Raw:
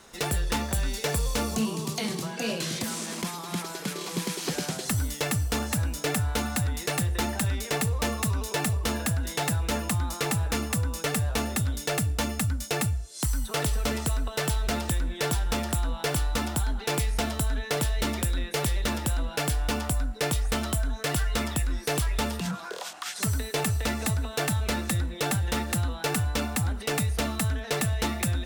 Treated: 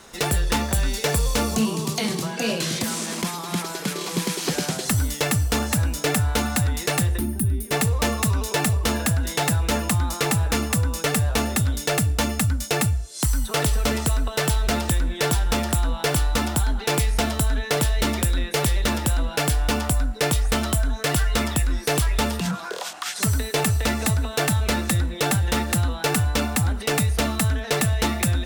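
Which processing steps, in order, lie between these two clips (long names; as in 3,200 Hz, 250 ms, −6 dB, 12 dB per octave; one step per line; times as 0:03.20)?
gain on a spectral selection 0:07.18–0:07.72, 410–8,500 Hz −18 dB
level +5.5 dB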